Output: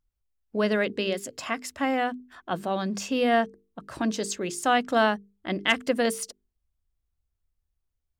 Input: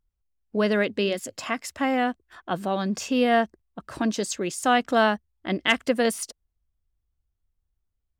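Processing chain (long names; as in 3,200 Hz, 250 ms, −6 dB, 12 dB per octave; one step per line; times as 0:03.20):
mains-hum notches 50/100/150/200/250/300/350/400/450 Hz
level −1.5 dB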